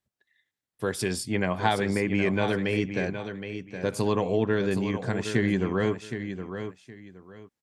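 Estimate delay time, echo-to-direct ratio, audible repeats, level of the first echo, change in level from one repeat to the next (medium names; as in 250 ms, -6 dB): 768 ms, -9.0 dB, 2, -9.0 dB, -12.5 dB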